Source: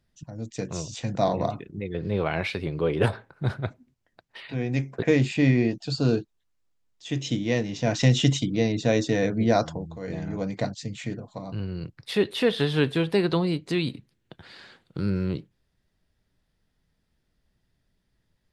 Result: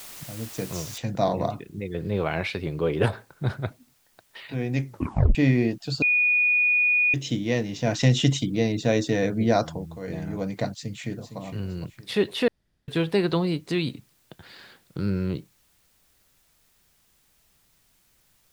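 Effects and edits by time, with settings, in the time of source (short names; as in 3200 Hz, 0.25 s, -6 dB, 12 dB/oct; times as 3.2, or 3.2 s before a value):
0.98 noise floor step -42 dB -65 dB
4.87 tape stop 0.48 s
6.02–7.14 bleep 2460 Hz -17.5 dBFS
10.74–11.4 echo throw 0.46 s, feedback 35%, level -10.5 dB
12.48–12.88 room tone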